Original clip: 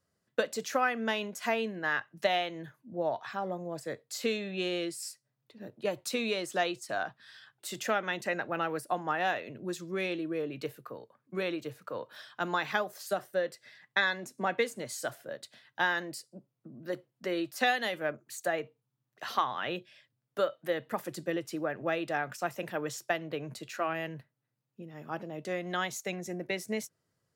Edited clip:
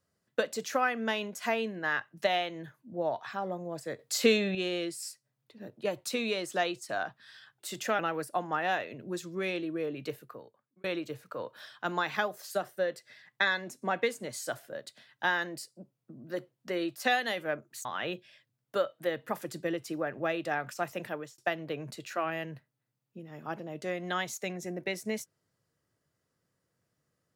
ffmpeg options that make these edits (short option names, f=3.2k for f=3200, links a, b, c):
-filter_complex "[0:a]asplit=7[a][b][c][d][e][f][g];[a]atrim=end=3.992[h];[b]atrim=start=3.988:end=4.552,asetpts=PTS-STARTPTS,volume=7.5dB[i];[c]atrim=start=4.548:end=7.992[j];[d]atrim=start=8.548:end=11.4,asetpts=PTS-STARTPTS,afade=t=out:st=2.162:d=0.69[k];[e]atrim=start=11.4:end=18.412,asetpts=PTS-STARTPTS,afade=t=in:d=0.004:c=hsin[l];[f]atrim=start=19.478:end=23.01,asetpts=PTS-STARTPTS,afade=t=out:st=3.212:d=0.32[m];[g]atrim=start=23.01,asetpts=PTS-STARTPTS,afade=t=in:d=0.004:c=hsin[n];[h][i]acrossfade=d=0.004:c1=hsin:c2=hsin[o];[o][j]acrossfade=d=0.004:c1=hsin:c2=hsin[p];[k][l]concat=n=2:v=0:a=1[q];[p][q]acrossfade=d=0.004:c1=hsin:c2=hsin[r];[m][n]concat=n=2:v=0:a=1[s];[r][s]acrossfade=d=0.004:c1=hsin:c2=hsin"